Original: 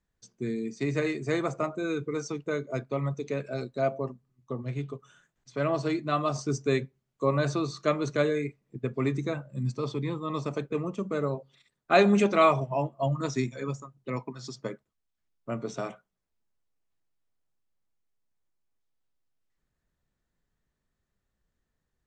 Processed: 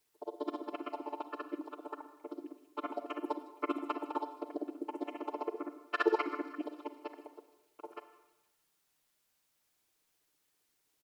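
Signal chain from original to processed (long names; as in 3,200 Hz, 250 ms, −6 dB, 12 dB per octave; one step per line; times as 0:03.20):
channel vocoder with a chord as carrier minor triad, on D3
high-shelf EQ 2,400 Hz −11 dB
mains-hum notches 50/100/150 Hz
granular cloud 91 ms, grains 7.6 per second, pitch spread up and down by 0 semitones
bit-depth reduction 12 bits, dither triangular
double-tracking delay 13 ms −14 dB
delay with a high-pass on its return 311 ms, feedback 69%, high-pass 2,900 Hz, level −10.5 dB
on a send at −10.5 dB: convolution reverb RT60 2.1 s, pre-delay 69 ms
on the sum: wrong playback speed 7.5 ips tape played at 15 ips
level −3 dB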